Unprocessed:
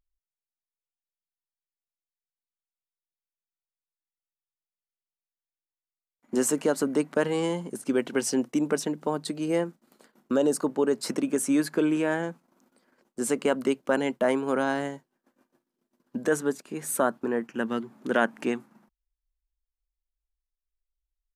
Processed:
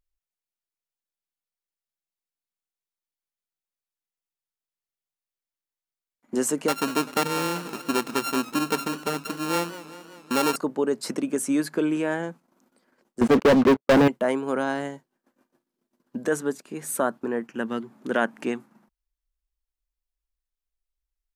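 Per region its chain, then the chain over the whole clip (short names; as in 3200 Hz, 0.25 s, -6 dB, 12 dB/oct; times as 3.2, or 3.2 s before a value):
6.68–10.56 sample sorter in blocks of 32 samples + warbling echo 0.194 s, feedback 64%, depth 132 cents, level -15 dB
13.21–14.08 LPF 1300 Hz + expander -36 dBFS + sample leveller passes 5
whole clip: dry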